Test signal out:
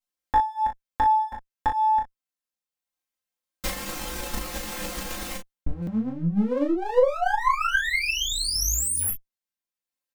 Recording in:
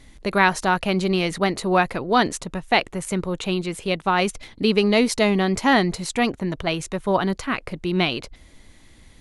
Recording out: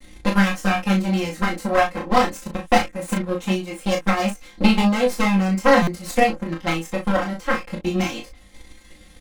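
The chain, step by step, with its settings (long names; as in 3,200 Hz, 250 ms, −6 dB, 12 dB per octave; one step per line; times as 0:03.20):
lower of the sound and its delayed copy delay 5.7 ms
dynamic equaliser 3,800 Hz, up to −5 dB, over −43 dBFS, Q 1.8
in parallel at 0 dB: downward compressor, threshold −34 dBFS
on the sum: comb filter 3.8 ms, depth 93%
chorus effect 0.22 Hz, delay 19.5 ms, depth 4.8 ms
transient designer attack +8 dB, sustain −4 dB
on a send: ambience of single reflections 14 ms −11.5 dB, 36 ms −5 dB
on the sum: buffer that repeats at 0:05.82, samples 256, times 8
level −3 dB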